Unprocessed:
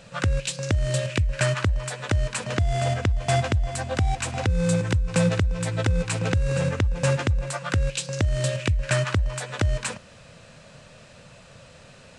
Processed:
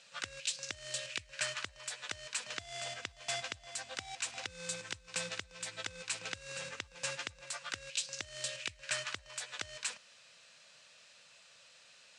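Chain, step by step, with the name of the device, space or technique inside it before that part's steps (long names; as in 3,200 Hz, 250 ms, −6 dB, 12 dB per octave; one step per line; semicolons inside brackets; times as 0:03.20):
piezo pickup straight into a mixer (low-pass filter 5,200 Hz 12 dB per octave; first difference)
level +1.5 dB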